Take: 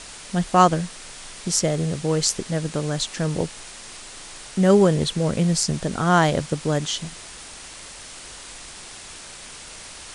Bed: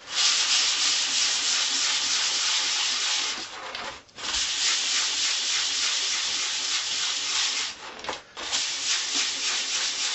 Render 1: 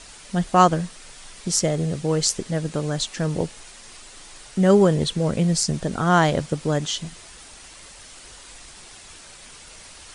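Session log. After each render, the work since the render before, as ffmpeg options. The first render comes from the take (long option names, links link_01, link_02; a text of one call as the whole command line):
ffmpeg -i in.wav -af "afftdn=noise_reduction=6:noise_floor=-40" out.wav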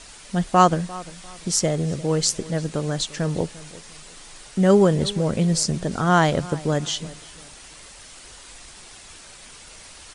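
ffmpeg -i in.wav -filter_complex "[0:a]asplit=2[link_01][link_02];[link_02]adelay=348,lowpass=frequency=3400:poles=1,volume=-19dB,asplit=2[link_03][link_04];[link_04]adelay=348,lowpass=frequency=3400:poles=1,volume=0.3,asplit=2[link_05][link_06];[link_06]adelay=348,lowpass=frequency=3400:poles=1,volume=0.3[link_07];[link_01][link_03][link_05][link_07]amix=inputs=4:normalize=0" out.wav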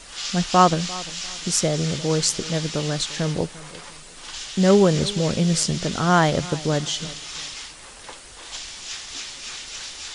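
ffmpeg -i in.wav -i bed.wav -filter_complex "[1:a]volume=-8.5dB[link_01];[0:a][link_01]amix=inputs=2:normalize=0" out.wav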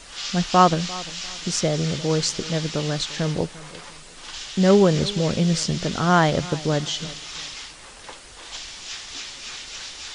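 ffmpeg -i in.wav -filter_complex "[0:a]acrossover=split=7200[link_01][link_02];[link_02]acompressor=threshold=-52dB:ratio=4:attack=1:release=60[link_03];[link_01][link_03]amix=inputs=2:normalize=0" out.wav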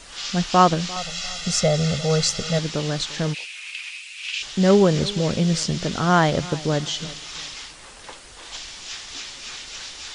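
ffmpeg -i in.wav -filter_complex "[0:a]asettb=1/sr,asplit=3[link_01][link_02][link_03];[link_01]atrim=end=0.964[link_04];[link_02]atrim=start=0.96:end=2.59,asetpts=PTS-STARTPTS,afade=type=in:duration=0.004:curve=qsin,afade=type=out:start_time=1.626:duration=0.004:curve=qsin,aecho=1:1:1.5:0.91,atrim=end_sample=71883[link_05];[link_03]atrim=start=2.586[link_06];[link_04][link_05]acrossfade=duration=0.004:curve1=hsin:curve2=qsin[link_07];[link_07][link_06]acrossfade=duration=0.004:curve1=qsin:curve2=hsin,asplit=3[link_08][link_09][link_10];[link_08]afade=type=out:start_time=3.33:duration=0.02[link_11];[link_09]highpass=frequency=2500:width_type=q:width=8.9,afade=type=in:start_time=3.33:duration=0.02,afade=type=out:start_time=4.41:duration=0.02[link_12];[link_10]afade=type=in:start_time=4.41:duration=0.02[link_13];[link_11][link_12][link_13]amix=inputs=3:normalize=0" out.wav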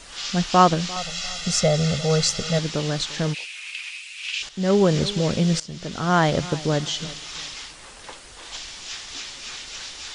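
ffmpeg -i in.wav -filter_complex "[0:a]asplit=3[link_01][link_02][link_03];[link_01]atrim=end=4.49,asetpts=PTS-STARTPTS,afade=type=out:start_time=4.486:duration=0.004:curve=hsin:silence=0.251189[link_04];[link_02]atrim=start=4.49:end=5.6,asetpts=PTS-STARTPTS,afade=type=in:duration=0.44:silence=0.251189,afade=type=out:start_time=1.106:duration=0.004:curve=hsin:silence=0.141254[link_05];[link_03]atrim=start=5.6,asetpts=PTS-STARTPTS,afade=type=in:duration=0.71:silence=0.141254[link_06];[link_04][link_05][link_06]concat=n=3:v=0:a=1" out.wav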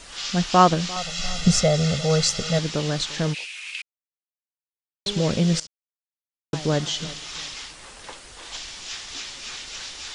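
ffmpeg -i in.wav -filter_complex "[0:a]asettb=1/sr,asplit=3[link_01][link_02][link_03];[link_01]atrim=end=1.194[link_04];[link_02]atrim=start=1.19:end=1.62,asetpts=PTS-STARTPTS,afade=type=in:duration=0.004:curve=qsin,afade=type=out:start_time=0.426:duration=0.004:curve=qsin,lowshelf=frequency=410:gain=12[link_05];[link_03]atrim=start=1.616[link_06];[link_04][link_05]acrossfade=duration=0.004:curve1=hsin:curve2=qsin[link_07];[link_07][link_06]acrossfade=duration=0.004:curve1=qsin:curve2=hsin,asplit=5[link_08][link_09][link_10][link_11][link_12];[link_08]atrim=end=3.82,asetpts=PTS-STARTPTS,afade=type=out:start_time=3.816:duration=0.004:curve=hsin[link_13];[link_09]atrim=start=3.82:end=5.06,asetpts=PTS-STARTPTS,volume=0[link_14];[link_10]atrim=start=5.06:end=5.67,asetpts=PTS-STARTPTS,afade=type=in:duration=0.004:curve=hsin,afade=type=out:start_time=0.606:duration=0.004:curve=hsin[link_15];[link_11]atrim=start=5.67:end=6.53,asetpts=PTS-STARTPTS,volume=0[link_16];[link_12]atrim=start=6.53,asetpts=PTS-STARTPTS,afade=type=in:duration=0.004:curve=hsin[link_17];[link_13][link_14][link_15][link_16][link_17]concat=n=5:v=0:a=1" out.wav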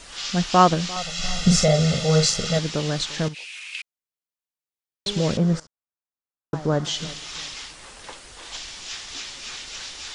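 ffmpeg -i in.wav -filter_complex "[0:a]asettb=1/sr,asplit=3[link_01][link_02][link_03];[link_01]atrim=end=1.184[link_04];[link_02]atrim=start=1.18:end=2.57,asetpts=PTS-STARTPTS,afade=type=in:duration=0.004:curve=qsin,afade=type=out:start_time=1.386:duration=0.004:curve=qsin,asplit=2[link_05][link_06];[link_06]adelay=45,volume=-5dB[link_07];[link_05][link_07]amix=inputs=2:normalize=0,atrim=end_sample=61299[link_08];[link_03]atrim=start=2.566[link_09];[link_04][link_08]acrossfade=duration=0.004:curve1=hsin:curve2=qsin[link_10];[link_10][link_09]acrossfade=duration=0.004:curve1=qsin:curve2=hsin,asettb=1/sr,asplit=3[link_11][link_12][link_13];[link_11]atrim=end=3.284[link_14];[link_12]atrim=start=3.28:end=3.72,asetpts=PTS-STARTPTS,afade=type=in:duration=0.004:curve=qsin,afade=type=out:start_time=0.436:duration=0.004:curve=qsin,acompressor=threshold=-33dB:ratio=5:attack=3.2:release=140:knee=1:detection=peak[link_15];[link_13]atrim=start=3.716[link_16];[link_14][link_15]acrossfade=duration=0.004:curve1=hsin:curve2=qsin[link_17];[link_17][link_16]acrossfade=duration=0.004:curve1=qsin:curve2=hsin,asettb=1/sr,asplit=3[link_18][link_19][link_20];[link_18]atrim=end=5.374[link_21];[link_19]atrim=start=5.37:end=6.85,asetpts=PTS-STARTPTS,afade=type=in:duration=0.004:curve=qsin,afade=type=out:start_time=1.476:duration=0.004:curve=qsin,highshelf=frequency=1900:width_type=q:width=1.5:gain=-11.5[link_22];[link_20]atrim=start=6.846[link_23];[link_21][link_22]acrossfade=duration=0.004:curve1=hsin:curve2=qsin[link_24];[link_24][link_23]acrossfade=duration=0.004:curve1=qsin:curve2=hsin" out.wav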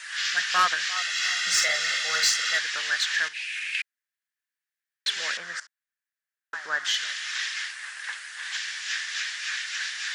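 ffmpeg -i in.wav -af "highpass=frequency=1700:width_type=q:width=6.4,asoftclip=type=tanh:threshold=-13.5dB" out.wav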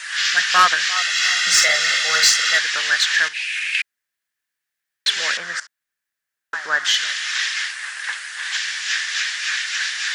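ffmpeg -i in.wav -af "volume=8dB" out.wav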